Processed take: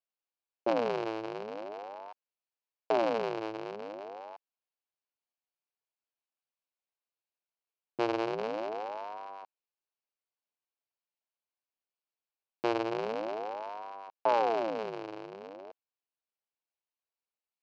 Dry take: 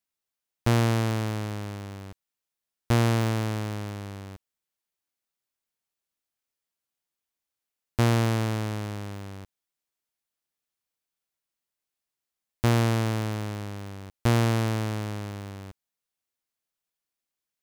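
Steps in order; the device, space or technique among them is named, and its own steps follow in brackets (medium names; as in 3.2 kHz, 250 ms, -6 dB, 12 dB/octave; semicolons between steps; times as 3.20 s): voice changer toy (ring modulator with a swept carrier 550 Hz, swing 60%, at 0.43 Hz; cabinet simulation 430–4100 Hz, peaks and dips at 1.3 kHz -5 dB, 1.9 kHz -10 dB, 3.5 kHz -9 dB)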